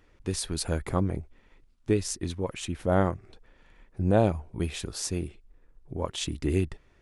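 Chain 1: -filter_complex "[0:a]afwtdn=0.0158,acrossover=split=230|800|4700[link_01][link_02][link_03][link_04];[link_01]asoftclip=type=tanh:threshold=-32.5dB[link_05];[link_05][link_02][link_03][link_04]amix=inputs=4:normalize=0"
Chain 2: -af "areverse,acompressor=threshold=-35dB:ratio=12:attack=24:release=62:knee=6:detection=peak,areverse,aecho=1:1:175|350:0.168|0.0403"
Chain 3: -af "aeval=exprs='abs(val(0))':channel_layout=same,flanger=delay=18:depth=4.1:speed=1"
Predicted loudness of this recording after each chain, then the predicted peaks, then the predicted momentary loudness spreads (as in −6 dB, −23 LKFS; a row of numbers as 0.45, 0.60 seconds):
−32.0, −37.0, −36.0 LKFS; −10.5, −19.0, −10.0 dBFS; 16, 13, 12 LU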